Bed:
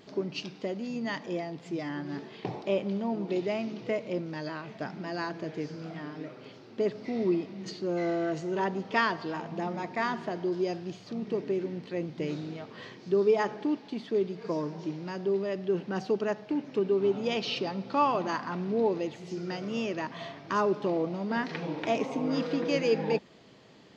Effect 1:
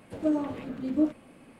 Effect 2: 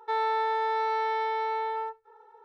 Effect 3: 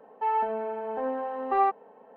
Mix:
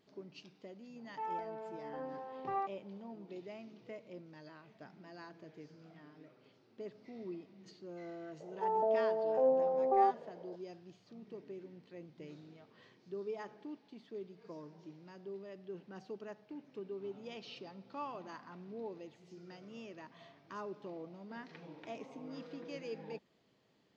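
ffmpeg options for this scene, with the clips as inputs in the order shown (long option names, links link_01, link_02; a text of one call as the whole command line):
ffmpeg -i bed.wav -i cue0.wav -i cue1.wav -i cue2.wav -filter_complex "[3:a]asplit=2[link_01][link_02];[0:a]volume=-17.5dB[link_03];[link_02]lowpass=frequency=600:width_type=q:width=4.6[link_04];[link_01]atrim=end=2.16,asetpts=PTS-STARTPTS,volume=-13.5dB,afade=type=in:duration=0.004:curve=hsin,afade=type=out:start_time=2.156:duration=0.004:curve=hsin,adelay=960[link_05];[link_04]atrim=end=2.16,asetpts=PTS-STARTPTS,volume=-7dB,afade=type=in:duration=0.004:curve=hsin,afade=type=out:start_time=2.156:duration=0.004:curve=hsin,adelay=8400[link_06];[link_03][link_05][link_06]amix=inputs=3:normalize=0" out.wav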